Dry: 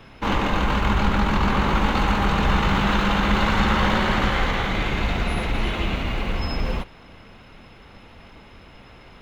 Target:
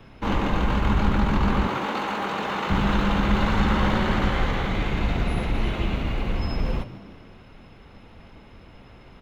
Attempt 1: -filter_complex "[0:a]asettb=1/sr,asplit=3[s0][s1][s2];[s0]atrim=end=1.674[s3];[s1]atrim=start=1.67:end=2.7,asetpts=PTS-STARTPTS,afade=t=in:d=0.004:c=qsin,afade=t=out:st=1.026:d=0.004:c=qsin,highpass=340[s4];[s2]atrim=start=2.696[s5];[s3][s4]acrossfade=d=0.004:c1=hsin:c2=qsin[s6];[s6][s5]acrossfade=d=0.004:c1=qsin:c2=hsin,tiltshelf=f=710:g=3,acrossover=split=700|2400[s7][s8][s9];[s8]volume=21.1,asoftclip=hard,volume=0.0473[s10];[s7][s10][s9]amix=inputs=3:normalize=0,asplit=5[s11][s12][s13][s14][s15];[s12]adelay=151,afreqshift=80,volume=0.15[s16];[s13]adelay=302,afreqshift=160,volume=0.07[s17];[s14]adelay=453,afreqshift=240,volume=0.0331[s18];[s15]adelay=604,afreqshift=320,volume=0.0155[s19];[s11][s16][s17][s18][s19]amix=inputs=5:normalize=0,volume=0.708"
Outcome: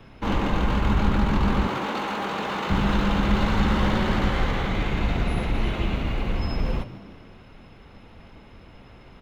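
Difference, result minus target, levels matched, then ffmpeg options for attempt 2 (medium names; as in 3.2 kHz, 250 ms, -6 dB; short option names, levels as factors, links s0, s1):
overload inside the chain: distortion +30 dB
-filter_complex "[0:a]asettb=1/sr,asplit=3[s0][s1][s2];[s0]atrim=end=1.674[s3];[s1]atrim=start=1.67:end=2.7,asetpts=PTS-STARTPTS,afade=t=in:d=0.004:c=qsin,afade=t=out:st=1.026:d=0.004:c=qsin,highpass=340[s4];[s2]atrim=start=2.696[s5];[s3][s4]acrossfade=d=0.004:c1=hsin:c2=qsin[s6];[s6][s5]acrossfade=d=0.004:c1=qsin:c2=hsin,tiltshelf=f=710:g=3,acrossover=split=700|2400[s7][s8][s9];[s8]volume=7.5,asoftclip=hard,volume=0.133[s10];[s7][s10][s9]amix=inputs=3:normalize=0,asplit=5[s11][s12][s13][s14][s15];[s12]adelay=151,afreqshift=80,volume=0.15[s16];[s13]adelay=302,afreqshift=160,volume=0.07[s17];[s14]adelay=453,afreqshift=240,volume=0.0331[s18];[s15]adelay=604,afreqshift=320,volume=0.0155[s19];[s11][s16][s17][s18][s19]amix=inputs=5:normalize=0,volume=0.708"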